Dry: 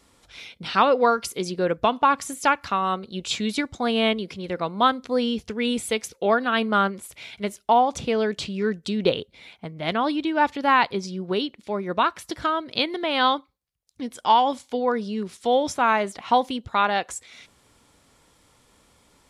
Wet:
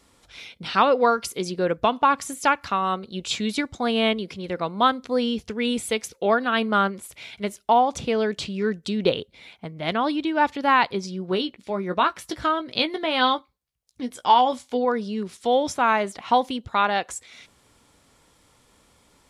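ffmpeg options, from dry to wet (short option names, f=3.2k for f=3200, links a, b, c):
-filter_complex "[0:a]asettb=1/sr,asplit=3[a][b][c];[a]atrim=end=11.314[d];[b]atrim=start=11.31:end=14.85,asetpts=PTS-STARTPTS,afade=t=in:d=0.004:c=qsin,afade=t=out:st=3.536:d=0.004:c=qsin,asplit=2[e][f];[f]adelay=16,volume=-9dB[g];[e][g]amix=inputs=2:normalize=0,atrim=end_sample=156114[h];[c]atrim=start=14.846[i];[d][h]acrossfade=d=0.004:c1=hsin:c2=qsin[j];[j][i]acrossfade=d=0.004:c1=qsin:c2=hsin"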